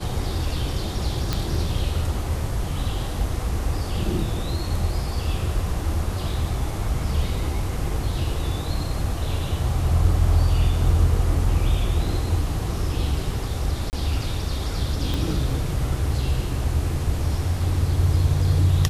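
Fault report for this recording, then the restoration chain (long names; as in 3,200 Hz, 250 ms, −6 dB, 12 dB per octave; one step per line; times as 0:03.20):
0:01.33: click −9 dBFS
0:13.90–0:13.93: drop-out 29 ms
0:15.14: click −13 dBFS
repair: click removal
repair the gap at 0:13.90, 29 ms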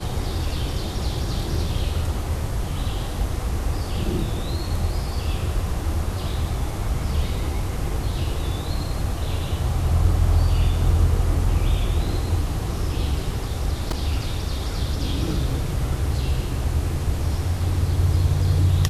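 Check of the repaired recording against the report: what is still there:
0:15.14: click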